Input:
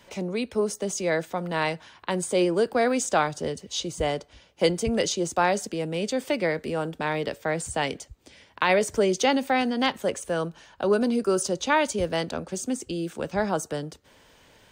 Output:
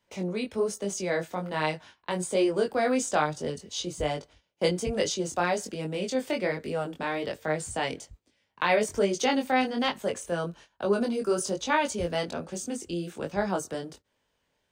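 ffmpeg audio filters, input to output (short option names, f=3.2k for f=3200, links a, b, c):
-af "agate=range=-17dB:threshold=-46dB:ratio=16:detection=peak,flanger=delay=19.5:depth=3.9:speed=1.2"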